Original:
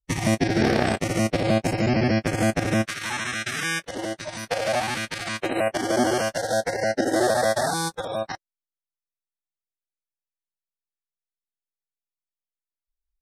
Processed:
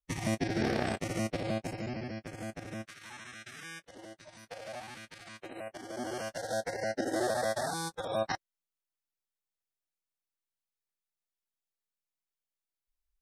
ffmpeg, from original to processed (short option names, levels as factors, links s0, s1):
-af "volume=2.51,afade=t=out:st=1.16:d=0.93:silence=0.354813,afade=t=in:st=5.93:d=0.62:silence=0.354813,afade=t=in:st=7.93:d=0.41:silence=0.354813"